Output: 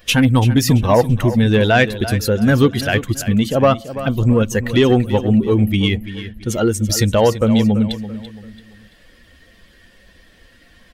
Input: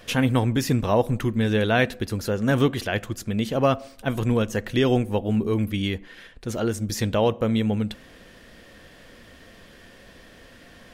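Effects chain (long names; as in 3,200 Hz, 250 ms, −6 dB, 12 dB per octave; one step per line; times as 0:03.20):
spectral dynamics exaggerated over time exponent 1.5
in parallel at +3 dB: downward compressor, threshold −29 dBFS, peak gain reduction 13 dB
on the sum: soft clipping −10.5 dBFS, distortion −21 dB
0:03.93–0:04.43: phaser swept by the level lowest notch 450 Hz, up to 4,300 Hz, full sweep at −17.5 dBFS
on a send: repeating echo 336 ms, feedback 35%, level −13 dB
on the sum: level +7.5 dB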